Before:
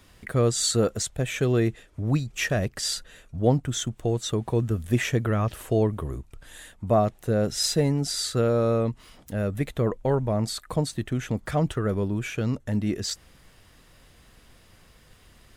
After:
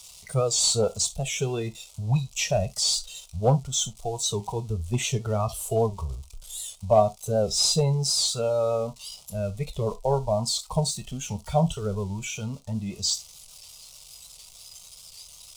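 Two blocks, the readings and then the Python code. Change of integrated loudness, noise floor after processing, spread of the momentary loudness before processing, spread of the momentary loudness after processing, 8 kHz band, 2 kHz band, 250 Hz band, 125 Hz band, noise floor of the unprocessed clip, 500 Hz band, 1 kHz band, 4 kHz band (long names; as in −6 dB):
0.0 dB, −50 dBFS, 9 LU, 22 LU, +5.0 dB, −5.5 dB, −6.0 dB, −2.0 dB, −56 dBFS, 0.0 dB, +2.5 dB, +4.5 dB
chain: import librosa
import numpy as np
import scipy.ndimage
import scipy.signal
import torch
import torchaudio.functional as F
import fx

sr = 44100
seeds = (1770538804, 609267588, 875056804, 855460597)

p1 = x + 0.5 * 10.0 ** (-26.0 / 20.0) * np.diff(np.sign(x), prepend=np.sign(x[:1]))
p2 = fx.noise_reduce_blind(p1, sr, reduce_db=11)
p3 = fx.high_shelf(p2, sr, hz=5100.0, db=10.5)
p4 = 10.0 ** (-15.0 / 20.0) * (np.abs((p3 / 10.0 ** (-15.0 / 20.0) + 3.0) % 4.0 - 2.0) - 1.0)
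p5 = p3 + (p4 * librosa.db_to_amplitude(-4.0))
p6 = fx.air_absorb(p5, sr, metres=92.0)
p7 = fx.fixed_phaser(p6, sr, hz=710.0, stages=4)
p8 = fx.rev_gated(p7, sr, seeds[0], gate_ms=90, shape='falling', drr_db=9.5)
y = fx.record_warp(p8, sr, rpm=78.0, depth_cents=100.0)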